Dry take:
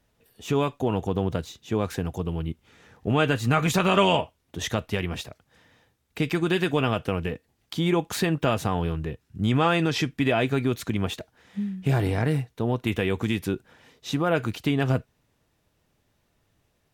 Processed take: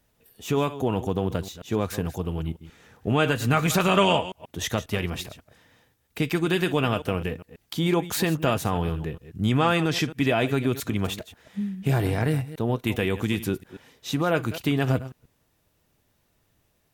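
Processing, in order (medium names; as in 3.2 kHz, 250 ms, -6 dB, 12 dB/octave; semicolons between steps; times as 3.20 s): chunks repeated in reverse 135 ms, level -14 dB; treble shelf 11 kHz +11 dB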